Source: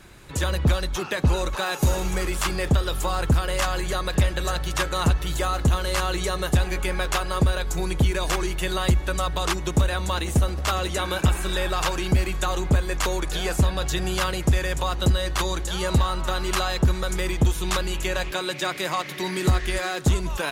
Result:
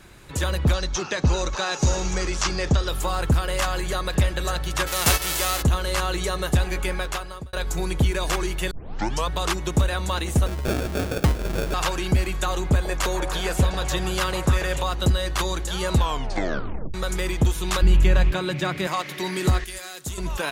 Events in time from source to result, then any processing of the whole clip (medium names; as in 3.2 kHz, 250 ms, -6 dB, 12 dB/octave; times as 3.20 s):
0.73–2.88 s: FFT filter 3.4 kHz 0 dB, 6.1 kHz +9 dB, 13 kHz -25 dB
4.86–5.61 s: formants flattened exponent 0.3
6.88–7.53 s: fade out
8.71 s: tape start 0.58 s
10.46–11.74 s: sample-rate reducer 1 kHz
12.65–14.82 s: repeats whose band climbs or falls 141 ms, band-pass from 700 Hz, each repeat 0.7 oct, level -2.5 dB
15.95 s: tape stop 0.99 s
17.82–18.87 s: tone controls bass +14 dB, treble -7 dB
19.64–20.18 s: pre-emphasis filter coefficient 0.8